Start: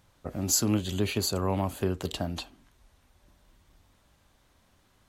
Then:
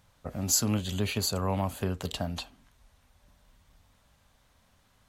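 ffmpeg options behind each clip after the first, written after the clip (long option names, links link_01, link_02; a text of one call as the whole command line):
ffmpeg -i in.wav -af "equalizer=frequency=340:width=3.5:gain=-10" out.wav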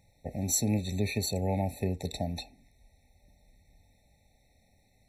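ffmpeg -i in.wav -af "afftfilt=real='re*eq(mod(floor(b*sr/1024/890),2),0)':imag='im*eq(mod(floor(b*sr/1024/890),2),0)':win_size=1024:overlap=0.75" out.wav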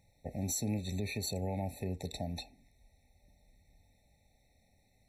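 ffmpeg -i in.wav -af "alimiter=limit=-21.5dB:level=0:latency=1:release=130,volume=-3.5dB" out.wav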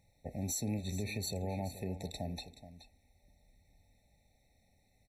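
ffmpeg -i in.wav -af "aecho=1:1:425:0.211,volume=-1.5dB" out.wav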